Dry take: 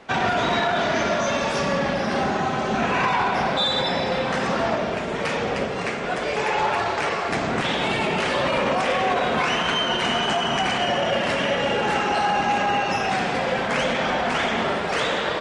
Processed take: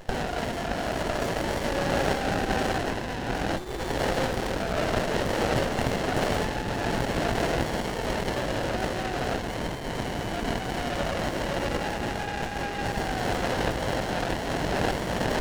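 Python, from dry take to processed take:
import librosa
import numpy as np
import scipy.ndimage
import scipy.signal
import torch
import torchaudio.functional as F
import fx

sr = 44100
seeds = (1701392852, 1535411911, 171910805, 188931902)

y = fx.self_delay(x, sr, depth_ms=0.11, at=(4.27, 4.83))
y = scipy.signal.sosfilt(scipy.signal.cheby1(2, 1.0, 790.0, 'highpass', fs=sr, output='sos'), y)
y = fx.high_shelf(y, sr, hz=2200.0, db=8.5)
y = fx.over_compress(y, sr, threshold_db=-26.0, ratio=-1.0)
y = fx.running_max(y, sr, window=33)
y = F.gain(torch.from_numpy(y), 2.0).numpy()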